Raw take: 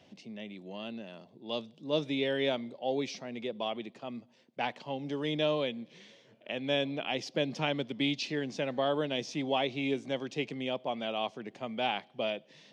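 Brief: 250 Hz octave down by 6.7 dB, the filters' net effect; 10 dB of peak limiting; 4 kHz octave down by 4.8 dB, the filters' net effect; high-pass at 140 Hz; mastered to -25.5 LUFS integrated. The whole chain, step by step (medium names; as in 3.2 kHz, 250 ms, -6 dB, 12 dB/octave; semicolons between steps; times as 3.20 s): high-pass 140 Hz; peaking EQ 250 Hz -7.5 dB; peaking EQ 4 kHz -6.5 dB; trim +15 dB; peak limiter -13.5 dBFS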